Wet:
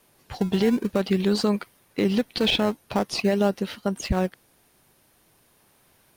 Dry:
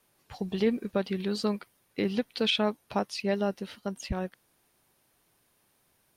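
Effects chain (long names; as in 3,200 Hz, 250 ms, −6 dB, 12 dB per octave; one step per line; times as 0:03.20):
in parallel at −11 dB: sample-and-hold swept by an LFO 21×, swing 160% 0.46 Hz
on the sum: brickwall limiter −19.5 dBFS, peak gain reduction 6 dB
level +7.5 dB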